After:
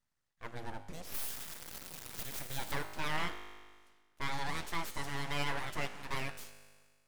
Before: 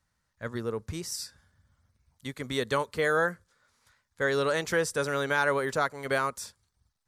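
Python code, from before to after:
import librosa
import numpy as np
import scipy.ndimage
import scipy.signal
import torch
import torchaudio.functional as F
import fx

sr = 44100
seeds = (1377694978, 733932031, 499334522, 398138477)

y = fx.crossing_spikes(x, sr, level_db=-25.0, at=(1.14, 2.72))
y = fx.comb_fb(y, sr, f0_hz=51.0, decay_s=1.6, harmonics='all', damping=0.0, mix_pct=70)
y = np.abs(y)
y = F.gain(torch.from_numpy(y), 1.5).numpy()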